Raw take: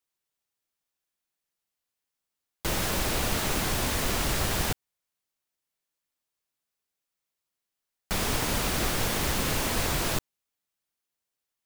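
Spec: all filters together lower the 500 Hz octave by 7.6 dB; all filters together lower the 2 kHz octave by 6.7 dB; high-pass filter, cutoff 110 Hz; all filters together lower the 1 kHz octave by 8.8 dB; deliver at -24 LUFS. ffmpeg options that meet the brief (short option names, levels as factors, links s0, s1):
-af "highpass=110,equalizer=f=500:t=o:g=-7.5,equalizer=f=1000:t=o:g=-7.5,equalizer=f=2000:t=o:g=-6,volume=2"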